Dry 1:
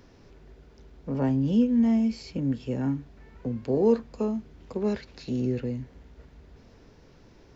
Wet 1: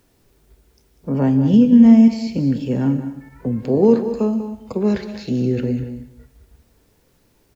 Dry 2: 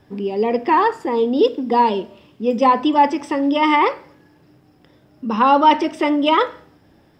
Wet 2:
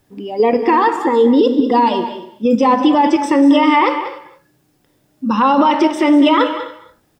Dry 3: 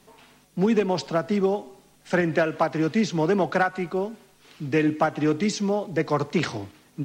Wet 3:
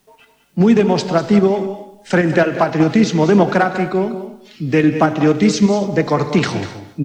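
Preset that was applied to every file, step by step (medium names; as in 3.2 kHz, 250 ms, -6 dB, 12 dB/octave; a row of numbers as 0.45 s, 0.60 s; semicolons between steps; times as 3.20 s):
spectral noise reduction 14 dB; dynamic bell 200 Hz, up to +4 dB, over -35 dBFS, Q 1.5; in parallel at +1 dB: level held to a coarse grid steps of 20 dB; on the sum: peak limiter -10 dBFS; word length cut 12-bit, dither triangular; delay 194 ms -12.5 dB; gated-style reverb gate 310 ms flat, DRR 11.5 dB; peak normalisation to -2 dBFS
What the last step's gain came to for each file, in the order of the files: +5.0 dB, +4.5 dB, +5.5 dB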